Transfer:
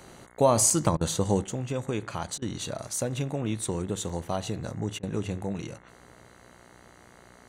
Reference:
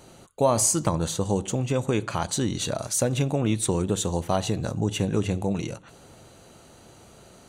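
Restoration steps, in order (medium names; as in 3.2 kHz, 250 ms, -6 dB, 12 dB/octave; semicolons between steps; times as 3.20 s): de-hum 60.5 Hz, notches 36; interpolate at 0.70/4.09 s, 4 ms; interpolate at 0.97/2.38/4.99 s, 39 ms; trim 0 dB, from 1.44 s +6 dB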